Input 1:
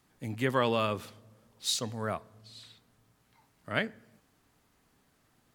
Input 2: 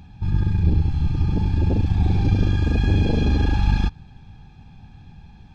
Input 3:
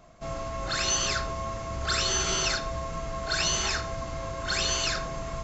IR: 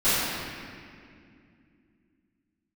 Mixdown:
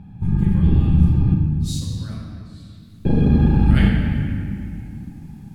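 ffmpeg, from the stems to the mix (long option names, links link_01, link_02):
-filter_complex "[0:a]asubboost=boost=9.5:cutoff=230,volume=-4.5dB,afade=type=in:start_time=0.83:duration=0.78:silence=0.421697,afade=type=in:start_time=2.71:duration=0.2:silence=0.281838,asplit=2[link_01][link_02];[link_02]volume=-12.5dB[link_03];[1:a]lowpass=1700,equalizer=frequency=160:width_type=o:width=2.6:gain=12,volume=-6dB,asplit=3[link_04][link_05][link_06];[link_04]atrim=end=1.34,asetpts=PTS-STARTPTS,afade=type=out:start_time=1.336:duration=0.004:curve=hsin[link_07];[link_05]atrim=start=1.34:end=3.05,asetpts=PTS-STARTPTS,volume=0[link_08];[link_06]atrim=start=3.05,asetpts=PTS-STARTPTS,afade=type=in:duration=0.004:curve=hsin[link_09];[link_07][link_08][link_09]concat=n=3:v=0:a=1,asplit=2[link_10][link_11];[link_11]volume=-19dB[link_12];[3:a]atrim=start_sample=2205[link_13];[link_03][link_12]amix=inputs=2:normalize=0[link_14];[link_14][link_13]afir=irnorm=-1:irlink=0[link_15];[link_01][link_10][link_15]amix=inputs=3:normalize=0,equalizer=frequency=11000:width_type=o:width=2.9:gain=11.5"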